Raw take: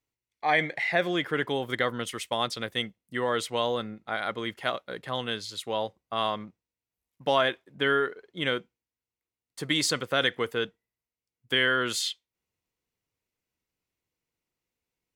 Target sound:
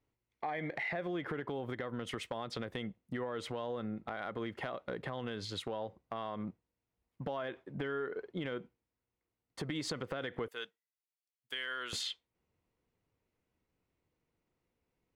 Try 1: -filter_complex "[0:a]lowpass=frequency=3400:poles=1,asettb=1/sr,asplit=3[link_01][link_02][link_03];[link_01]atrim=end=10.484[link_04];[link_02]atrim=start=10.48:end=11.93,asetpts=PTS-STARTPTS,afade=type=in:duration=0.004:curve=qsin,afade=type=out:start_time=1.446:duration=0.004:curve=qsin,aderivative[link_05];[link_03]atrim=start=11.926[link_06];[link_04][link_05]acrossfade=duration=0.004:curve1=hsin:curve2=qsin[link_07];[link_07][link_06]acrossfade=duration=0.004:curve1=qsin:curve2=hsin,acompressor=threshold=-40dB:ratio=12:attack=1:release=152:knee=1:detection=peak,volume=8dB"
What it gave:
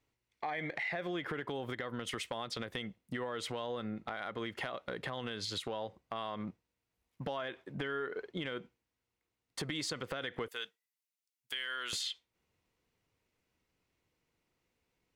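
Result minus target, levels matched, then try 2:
4,000 Hz band +2.5 dB
-filter_complex "[0:a]lowpass=frequency=960:poles=1,asettb=1/sr,asplit=3[link_01][link_02][link_03];[link_01]atrim=end=10.484[link_04];[link_02]atrim=start=10.48:end=11.93,asetpts=PTS-STARTPTS,afade=type=in:duration=0.004:curve=qsin,afade=type=out:start_time=1.446:duration=0.004:curve=qsin,aderivative[link_05];[link_03]atrim=start=11.926[link_06];[link_04][link_05]acrossfade=duration=0.004:curve1=hsin:curve2=qsin[link_07];[link_07][link_06]acrossfade=duration=0.004:curve1=qsin:curve2=hsin,acompressor=threshold=-40dB:ratio=12:attack=1:release=152:knee=1:detection=peak,volume=8dB"

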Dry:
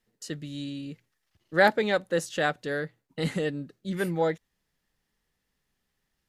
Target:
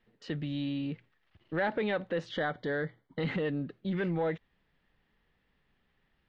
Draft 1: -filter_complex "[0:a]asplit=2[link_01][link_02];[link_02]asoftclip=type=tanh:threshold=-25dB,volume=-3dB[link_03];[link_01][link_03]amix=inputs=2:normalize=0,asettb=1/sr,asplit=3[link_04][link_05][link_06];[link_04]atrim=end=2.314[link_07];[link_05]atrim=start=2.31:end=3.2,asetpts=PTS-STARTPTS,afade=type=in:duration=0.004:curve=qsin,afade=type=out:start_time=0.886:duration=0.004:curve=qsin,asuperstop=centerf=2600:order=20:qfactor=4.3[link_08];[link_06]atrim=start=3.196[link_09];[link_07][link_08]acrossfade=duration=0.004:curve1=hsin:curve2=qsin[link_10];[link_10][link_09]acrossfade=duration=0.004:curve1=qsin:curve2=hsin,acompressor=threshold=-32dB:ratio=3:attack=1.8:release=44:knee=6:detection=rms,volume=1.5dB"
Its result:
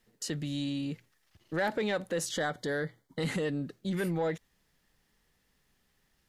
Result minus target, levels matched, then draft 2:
4,000 Hz band +4.0 dB
-filter_complex "[0:a]asplit=2[link_01][link_02];[link_02]asoftclip=type=tanh:threshold=-25dB,volume=-3dB[link_03];[link_01][link_03]amix=inputs=2:normalize=0,asettb=1/sr,asplit=3[link_04][link_05][link_06];[link_04]atrim=end=2.314[link_07];[link_05]atrim=start=2.31:end=3.2,asetpts=PTS-STARTPTS,afade=type=in:duration=0.004:curve=qsin,afade=type=out:start_time=0.886:duration=0.004:curve=qsin,asuperstop=centerf=2600:order=20:qfactor=4.3[link_08];[link_06]atrim=start=3.196[link_09];[link_07][link_08]acrossfade=duration=0.004:curve1=hsin:curve2=qsin[link_10];[link_10][link_09]acrossfade=duration=0.004:curve1=qsin:curve2=hsin,acompressor=threshold=-32dB:ratio=3:attack=1.8:release=44:knee=6:detection=rms,lowpass=frequency=3400:width=0.5412,lowpass=frequency=3400:width=1.3066,volume=1.5dB"

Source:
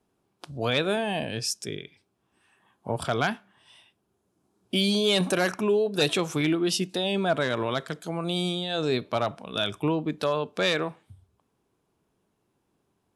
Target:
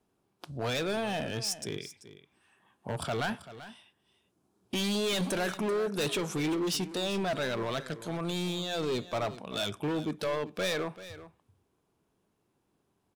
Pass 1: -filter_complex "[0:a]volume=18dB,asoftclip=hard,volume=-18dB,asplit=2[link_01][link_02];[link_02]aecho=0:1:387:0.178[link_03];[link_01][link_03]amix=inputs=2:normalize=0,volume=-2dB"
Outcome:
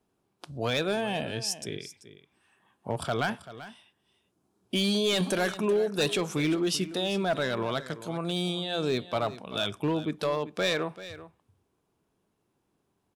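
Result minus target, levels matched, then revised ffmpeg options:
gain into a clipping stage and back: distortion −9 dB
-filter_complex "[0:a]volume=25.5dB,asoftclip=hard,volume=-25.5dB,asplit=2[link_01][link_02];[link_02]aecho=0:1:387:0.178[link_03];[link_01][link_03]amix=inputs=2:normalize=0,volume=-2dB"

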